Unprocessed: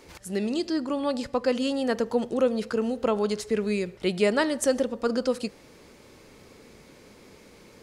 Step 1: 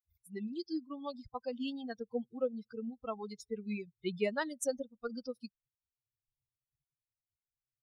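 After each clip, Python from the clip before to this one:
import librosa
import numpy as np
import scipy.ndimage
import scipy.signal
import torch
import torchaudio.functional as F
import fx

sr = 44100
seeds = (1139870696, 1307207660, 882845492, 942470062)

y = fx.bin_expand(x, sr, power=3.0)
y = y * librosa.db_to_amplitude(-6.5)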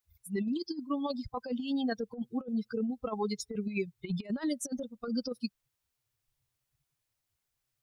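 y = fx.over_compress(x, sr, threshold_db=-40.0, ratio=-0.5)
y = y * librosa.db_to_amplitude(8.0)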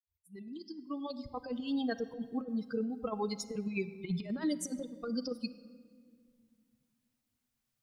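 y = fx.fade_in_head(x, sr, length_s=1.78)
y = fx.room_shoebox(y, sr, seeds[0], volume_m3=3300.0, walls='mixed', distance_m=0.55)
y = y * librosa.db_to_amplitude(-1.5)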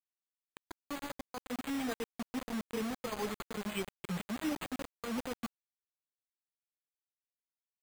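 y = np.repeat(x[::8], 8)[:len(x)]
y = fx.quant_dither(y, sr, seeds[1], bits=6, dither='none')
y = y * librosa.db_to_amplitude(-3.0)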